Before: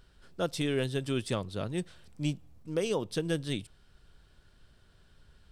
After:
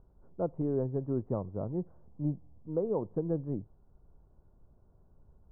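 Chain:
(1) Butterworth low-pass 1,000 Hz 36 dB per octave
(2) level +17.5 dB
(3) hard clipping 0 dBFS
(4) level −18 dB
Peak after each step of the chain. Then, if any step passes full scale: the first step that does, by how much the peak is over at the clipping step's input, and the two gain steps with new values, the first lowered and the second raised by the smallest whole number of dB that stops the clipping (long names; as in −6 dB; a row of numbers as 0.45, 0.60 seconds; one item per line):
−19.5, −2.0, −2.0, −20.0 dBFS
no step passes full scale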